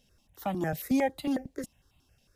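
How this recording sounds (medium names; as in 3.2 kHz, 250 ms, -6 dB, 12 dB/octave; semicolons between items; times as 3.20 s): notches that jump at a steady rate 11 Hz 330–1600 Hz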